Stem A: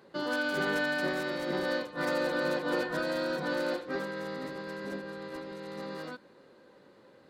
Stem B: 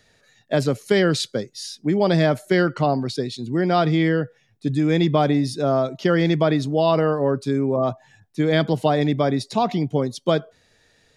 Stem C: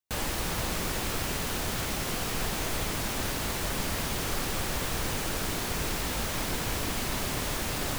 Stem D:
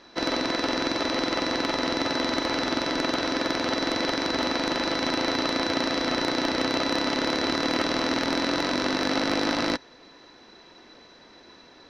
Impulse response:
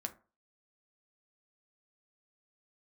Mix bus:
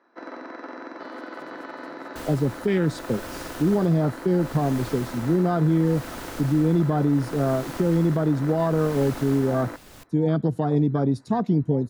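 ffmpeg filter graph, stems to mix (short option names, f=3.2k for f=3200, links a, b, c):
-filter_complex "[0:a]alimiter=level_in=1dB:limit=-24dB:level=0:latency=1:release=410,volume=-1dB,adelay=850,volume=-12dB[a];[1:a]bandreject=f=580:w=12,afwtdn=0.0794,firequalizer=gain_entry='entry(200,0);entry(620,-7);entry(8100,3)':delay=0.05:min_phase=1,adelay=1750,volume=2dB,asplit=2[b][c];[c]volume=-17.5dB[d];[2:a]tremolo=f=0.71:d=0.68,adelay=2050,volume=-10dB,asplit=2[e][f];[f]volume=-8dB[g];[3:a]highpass=f=220:w=0.5412,highpass=f=220:w=1.3066,highshelf=f=2.3k:t=q:w=1.5:g=-14,volume=-11dB[h];[4:a]atrim=start_sample=2205[i];[d][g]amix=inputs=2:normalize=0[j];[j][i]afir=irnorm=-1:irlink=0[k];[a][b][e][h][k]amix=inputs=5:normalize=0,alimiter=limit=-12.5dB:level=0:latency=1:release=144"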